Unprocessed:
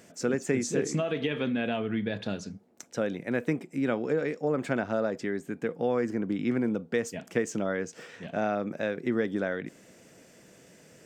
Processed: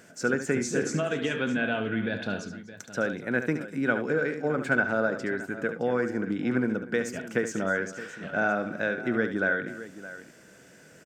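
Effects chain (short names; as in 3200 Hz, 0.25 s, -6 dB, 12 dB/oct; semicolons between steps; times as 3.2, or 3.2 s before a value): bell 1500 Hz +13.5 dB 0.23 oct; tapped delay 72/245/618 ms -9.5/-18/-15 dB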